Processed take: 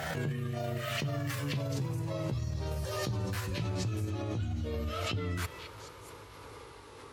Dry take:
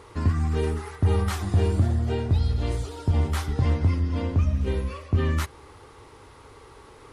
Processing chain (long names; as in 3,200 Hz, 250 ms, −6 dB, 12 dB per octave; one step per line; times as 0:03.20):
pitch glide at a constant tempo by +8 semitones ending unshifted
high-pass filter 60 Hz
reversed playback
downward compressor 6 to 1, threshold −33 dBFS, peak gain reduction 16 dB
reversed playback
echo through a band-pass that steps 213 ms, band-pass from 3,300 Hz, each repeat 0.7 octaves, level −2.5 dB
background raised ahead of every attack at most 23 dB per second